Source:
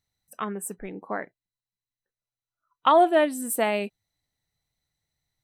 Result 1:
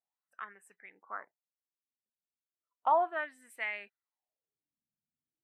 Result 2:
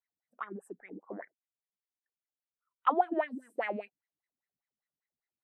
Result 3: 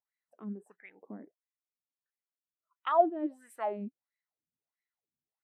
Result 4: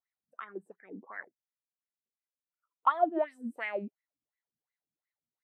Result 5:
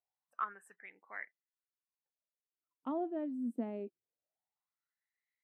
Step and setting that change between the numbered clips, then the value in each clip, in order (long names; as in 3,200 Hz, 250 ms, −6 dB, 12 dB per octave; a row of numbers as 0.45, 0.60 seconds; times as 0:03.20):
LFO wah, speed: 0.35, 5, 1.5, 2.8, 0.23 Hertz